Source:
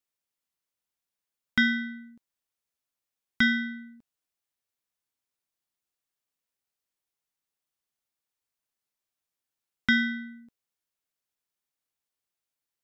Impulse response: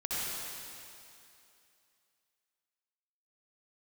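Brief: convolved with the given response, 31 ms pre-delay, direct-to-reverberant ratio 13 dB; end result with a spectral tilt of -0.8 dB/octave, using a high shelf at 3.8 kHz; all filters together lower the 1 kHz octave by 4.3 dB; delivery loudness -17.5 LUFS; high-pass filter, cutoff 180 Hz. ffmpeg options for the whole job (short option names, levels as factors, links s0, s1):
-filter_complex "[0:a]highpass=180,equalizer=f=1000:t=o:g=-6.5,highshelf=f=3800:g=-4.5,asplit=2[s0][s1];[1:a]atrim=start_sample=2205,adelay=31[s2];[s1][s2]afir=irnorm=-1:irlink=0,volume=0.106[s3];[s0][s3]amix=inputs=2:normalize=0,volume=3.76"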